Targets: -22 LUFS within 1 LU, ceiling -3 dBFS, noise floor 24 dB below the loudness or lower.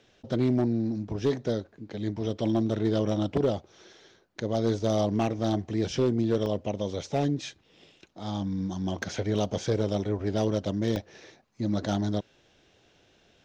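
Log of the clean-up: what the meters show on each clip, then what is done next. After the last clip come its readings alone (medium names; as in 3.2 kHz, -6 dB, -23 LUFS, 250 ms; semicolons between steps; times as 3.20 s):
clipped samples 0.5%; clipping level -17.5 dBFS; dropouts 3; longest dropout 1.2 ms; loudness -29.0 LUFS; peak level -17.5 dBFS; loudness target -22.0 LUFS
-> clip repair -17.5 dBFS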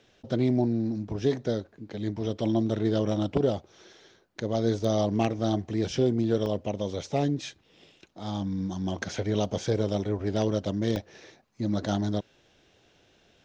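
clipped samples 0.0%; dropouts 3; longest dropout 1.2 ms
-> interpolate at 6.46/9.45/10.96 s, 1.2 ms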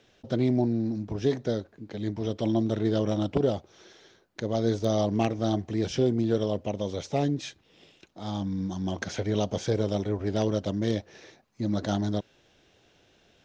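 dropouts 0; loudness -28.5 LUFS; peak level -8.5 dBFS; loudness target -22.0 LUFS
-> trim +6.5 dB; peak limiter -3 dBFS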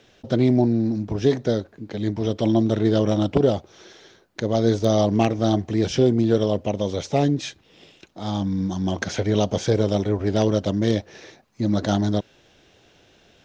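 loudness -22.0 LUFS; peak level -3.0 dBFS; noise floor -57 dBFS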